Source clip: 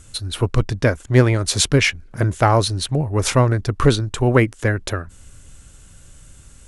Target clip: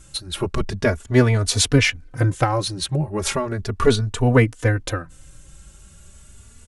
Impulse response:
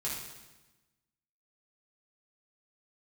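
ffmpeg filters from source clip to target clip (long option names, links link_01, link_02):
-filter_complex "[0:a]asettb=1/sr,asplit=3[link_01][link_02][link_03];[link_01]atrim=end=2.434[link_04];[link_02]atrim=start=2.43:end=3.85,asetpts=PTS-STARTPTS,afade=type=in:duration=0.004:curve=qsin,afade=type=out:start_time=1.416:duration=0.004:curve=qsin,acompressor=threshold=-16dB:ratio=6[link_05];[link_03]atrim=start=3.846[link_06];[link_04][link_05]acrossfade=duration=0.004:curve1=hsin:curve2=qsin[link_07];[link_07][link_06]acrossfade=duration=0.004:curve1=qsin:curve2=hsin,asplit=2[link_08][link_09];[link_09]adelay=3.3,afreqshift=0.37[link_10];[link_08][link_10]amix=inputs=2:normalize=1,volume=2dB"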